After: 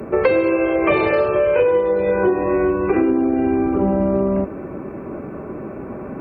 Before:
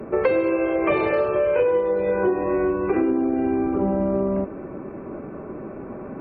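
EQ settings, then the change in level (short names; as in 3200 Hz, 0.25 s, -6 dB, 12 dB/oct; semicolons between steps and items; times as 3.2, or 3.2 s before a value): HPF 54 Hz; low shelf 72 Hz +8.5 dB; high shelf 3800 Hz +8.5 dB; +3.5 dB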